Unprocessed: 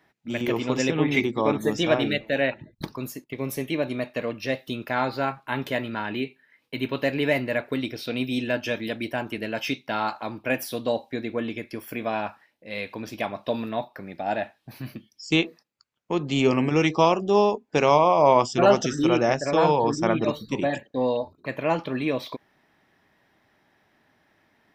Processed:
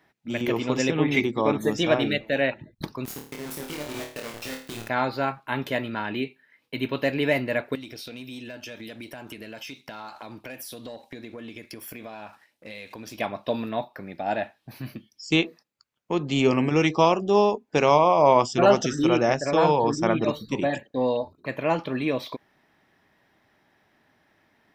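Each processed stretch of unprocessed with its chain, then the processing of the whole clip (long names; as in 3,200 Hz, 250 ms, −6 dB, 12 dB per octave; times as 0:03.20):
0:03.05–0:04.89: downward compressor 10 to 1, threshold −33 dBFS + bit-depth reduction 6 bits, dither none + flutter between parallel walls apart 4.6 metres, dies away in 0.43 s
0:07.75–0:13.19: parametric band 8,900 Hz +8.5 dB 2 octaves + leveller curve on the samples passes 1 + downward compressor 8 to 1, threshold −36 dBFS
whole clip: no processing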